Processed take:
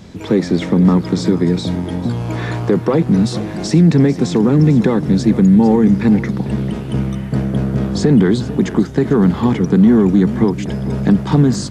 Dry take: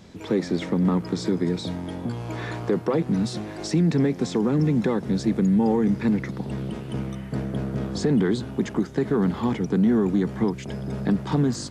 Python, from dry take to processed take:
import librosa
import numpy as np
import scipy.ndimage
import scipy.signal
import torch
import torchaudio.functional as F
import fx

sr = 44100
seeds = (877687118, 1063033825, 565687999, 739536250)

y = fx.bass_treble(x, sr, bass_db=4, treble_db=0)
y = y + 10.0 ** (-15.0 / 20.0) * np.pad(y, (int(447 * sr / 1000.0), 0))[:len(y)]
y = F.gain(torch.from_numpy(y), 7.5).numpy()